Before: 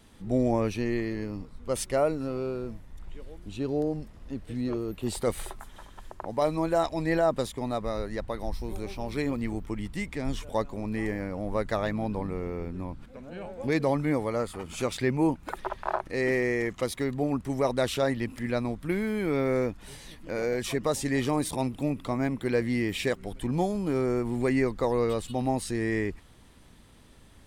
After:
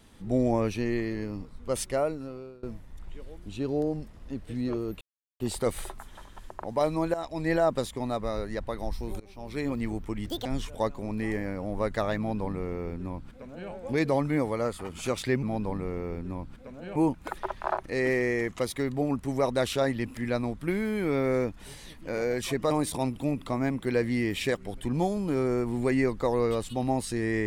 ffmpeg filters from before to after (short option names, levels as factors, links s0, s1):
-filter_complex "[0:a]asplit=10[s0][s1][s2][s3][s4][s5][s6][s7][s8][s9];[s0]atrim=end=2.63,asetpts=PTS-STARTPTS,afade=t=out:st=1.79:d=0.84:silence=0.0707946[s10];[s1]atrim=start=2.63:end=5.01,asetpts=PTS-STARTPTS,afade=t=in:d=0.004:c=hsin:silence=0.0707946,afade=t=out:st=2.376:d=0.004:c=hsin,apad=pad_dur=0.39[s11];[s2]atrim=start=5.01:end=6.75,asetpts=PTS-STARTPTS,afade=t=in:d=0.004:c=hsin,afade=t=out:st=1.736:d=0.004:c=hsin:silence=0.223872[s12];[s3]atrim=start=6.75:end=8.81,asetpts=PTS-STARTPTS,afade=t=in:d=0.36:silence=0.223872,afade=t=out:st=2.056:d=0.004:c=hsin:silence=0.0707946[s13];[s4]atrim=start=8.81:end=9.874,asetpts=PTS-STARTPTS,afade=t=in:d=0.54:silence=0.0707946[s14];[s5]atrim=start=9.87:end=10.2,asetpts=PTS-STARTPTS,asetrate=74529,aresample=44100,atrim=end_sample=8611,asetpts=PTS-STARTPTS[s15];[s6]atrim=start=10.196:end=15.172[s16];[s7]atrim=start=11.918:end=13.452[s17];[s8]atrim=start=15.168:end=20.922[s18];[s9]atrim=start=21.288[s19];[s10][s11][s12][s13][s14]concat=n=5:v=0:a=1[s20];[s20][s15]acrossfade=d=0.004:c1=hsin:c2=hsin[s21];[s21][s16]acrossfade=d=0.004:c1=hsin:c2=hsin[s22];[s22][s17]acrossfade=d=0.004:c1=hsin:c2=hsin[s23];[s23][s18]acrossfade=d=0.004:c1=hsin:c2=hsin[s24];[s24][s19]acrossfade=d=0.004:c1=hsin:c2=hsin"